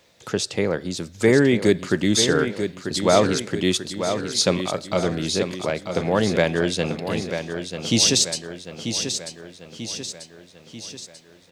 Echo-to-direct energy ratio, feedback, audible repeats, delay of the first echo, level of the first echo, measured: −6.5 dB, 52%, 5, 940 ms, −8.0 dB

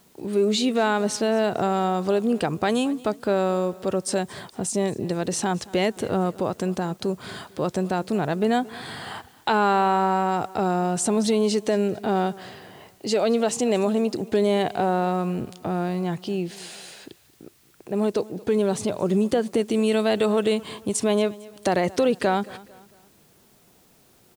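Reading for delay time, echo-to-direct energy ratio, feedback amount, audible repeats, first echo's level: 225 ms, −20.0 dB, 41%, 2, −21.0 dB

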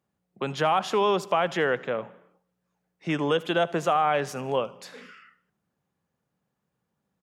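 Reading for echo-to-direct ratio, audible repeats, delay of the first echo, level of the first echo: −21.0 dB, 2, 78 ms, −21.5 dB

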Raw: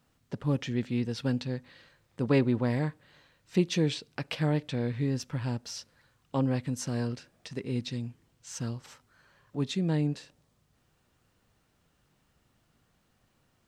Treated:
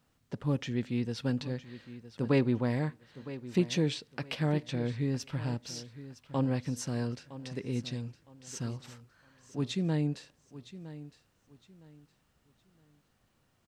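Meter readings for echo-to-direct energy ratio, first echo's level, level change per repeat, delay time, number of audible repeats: −14.5 dB, −15.0 dB, −11.5 dB, 962 ms, 2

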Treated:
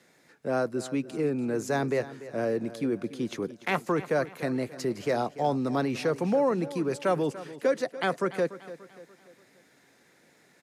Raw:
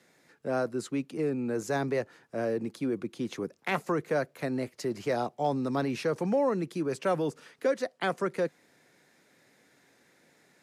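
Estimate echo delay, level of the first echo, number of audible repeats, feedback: 291 ms, −15.5 dB, 3, 45%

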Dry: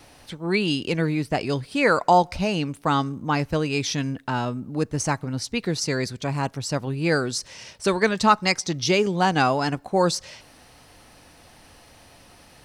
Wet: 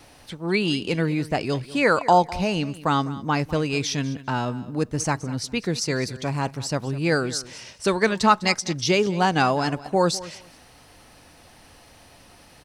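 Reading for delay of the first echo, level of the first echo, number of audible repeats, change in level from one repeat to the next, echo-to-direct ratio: 202 ms, −17.5 dB, 2, −15.0 dB, −17.5 dB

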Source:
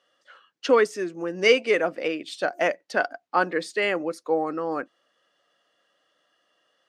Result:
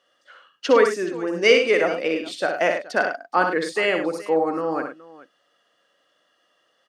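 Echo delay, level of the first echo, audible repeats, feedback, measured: 62 ms, −6.0 dB, 3, repeats not evenly spaced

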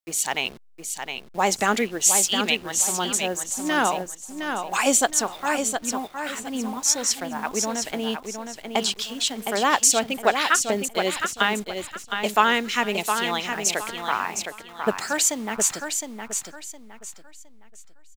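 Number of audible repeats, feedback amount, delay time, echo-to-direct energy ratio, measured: 3, 29%, 713 ms, −6.0 dB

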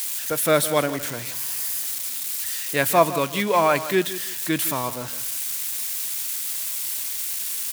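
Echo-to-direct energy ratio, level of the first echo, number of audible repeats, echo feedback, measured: −13.5 dB, −14.0 dB, 2, 23%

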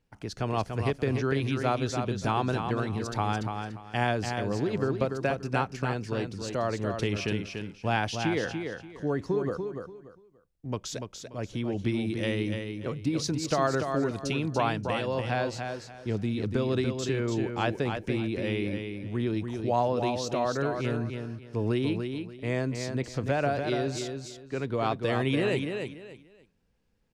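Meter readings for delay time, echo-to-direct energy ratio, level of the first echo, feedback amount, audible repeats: 290 ms, −5.5 dB, −6.0 dB, 25%, 3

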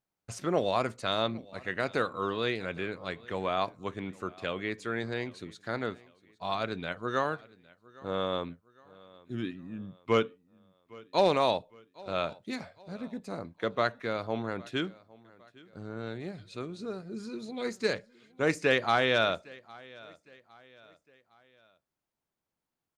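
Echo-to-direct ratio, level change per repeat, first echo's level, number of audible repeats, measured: −22.0 dB, −7.5 dB, −23.0 dB, 2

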